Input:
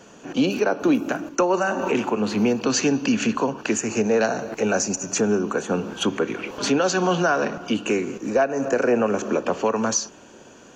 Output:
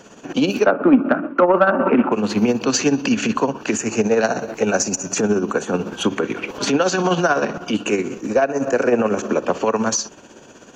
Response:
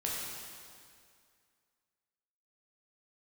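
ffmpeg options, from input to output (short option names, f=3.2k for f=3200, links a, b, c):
-filter_complex "[0:a]asettb=1/sr,asplit=3[a][b][c];[a]atrim=end=0.664[d];[b]atrim=start=0.66:end=2.12,asetpts=PTS-STARTPTS,afade=t=in:d=0.004:c=qsin,afade=t=out:st=1.456:d=0.004:c=qsin,highpass=150,equalizer=f=180:t=q:w=4:g=4,equalizer=f=250:t=q:w=4:g=9,equalizer=f=590:t=q:w=4:g=7,equalizer=f=1.3k:t=q:w=4:g=10,lowpass=f=2.3k:w=0.5412,lowpass=f=2.3k:w=1.3066[e];[c]atrim=start=2.116[f];[d][e]acrossfade=d=0.004:c1=hsin:c2=qsin[g];[g][f]acrossfade=d=0.004:c1=qsin:c2=hsin,tremolo=f=16:d=0.56,acontrast=67,volume=-1dB"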